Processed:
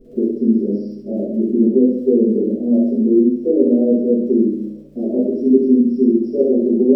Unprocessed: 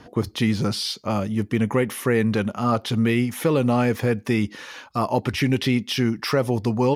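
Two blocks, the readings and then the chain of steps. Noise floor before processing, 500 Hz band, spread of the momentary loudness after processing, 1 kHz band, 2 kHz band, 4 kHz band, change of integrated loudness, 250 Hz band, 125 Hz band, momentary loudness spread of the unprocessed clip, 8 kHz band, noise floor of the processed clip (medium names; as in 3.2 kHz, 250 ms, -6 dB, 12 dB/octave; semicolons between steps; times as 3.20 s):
-47 dBFS, +7.5 dB, 8 LU, under -20 dB, under -40 dB, under -30 dB, +6.5 dB, +9.0 dB, no reading, 5 LU, under -25 dB, -36 dBFS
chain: FFT band-pass 200–5700 Hz; inverse Chebyshev band-stop 1.3–3.4 kHz, stop band 70 dB; resonant low shelf 760 Hz +6 dB, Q 3; hum 50 Hz, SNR 32 dB; crackle 62 per s -45 dBFS; on a send: flutter echo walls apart 11.5 m, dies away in 0.66 s; on the sum: simulated room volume 47 m³, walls mixed, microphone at 1.6 m; trim -9 dB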